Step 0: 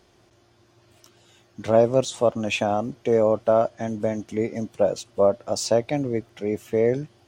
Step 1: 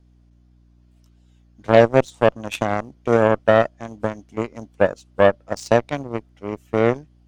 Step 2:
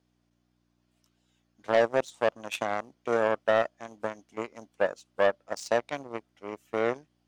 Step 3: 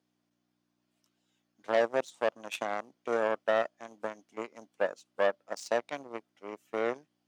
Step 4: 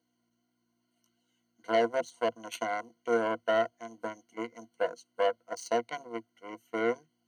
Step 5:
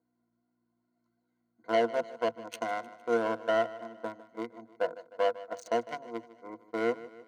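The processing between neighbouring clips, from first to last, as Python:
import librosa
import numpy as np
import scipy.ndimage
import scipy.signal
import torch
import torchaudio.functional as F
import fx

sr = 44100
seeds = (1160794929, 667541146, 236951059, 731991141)

y1 = fx.cheby_harmonics(x, sr, harmonics=(7,), levels_db=(-18,), full_scale_db=-4.5)
y1 = fx.add_hum(y1, sr, base_hz=60, snr_db=33)
y1 = fx.wow_flutter(y1, sr, seeds[0], rate_hz=2.1, depth_cents=27.0)
y1 = y1 * librosa.db_to_amplitude(5.0)
y2 = fx.highpass(y1, sr, hz=590.0, slope=6)
y2 = 10.0 ** (-9.0 / 20.0) * np.tanh(y2 / 10.0 ** (-9.0 / 20.0))
y2 = y2 * librosa.db_to_amplitude(-4.5)
y3 = scipy.signal.sosfilt(scipy.signal.butter(2, 180.0, 'highpass', fs=sr, output='sos'), y2)
y3 = y3 * librosa.db_to_amplitude(-3.5)
y4 = fx.ripple_eq(y3, sr, per_octave=1.9, db=17)
y4 = y4 * librosa.db_to_amplitude(-2.5)
y5 = fx.wiener(y4, sr, points=15)
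y5 = fx.echo_feedback(y5, sr, ms=153, feedback_pct=53, wet_db=-17.0)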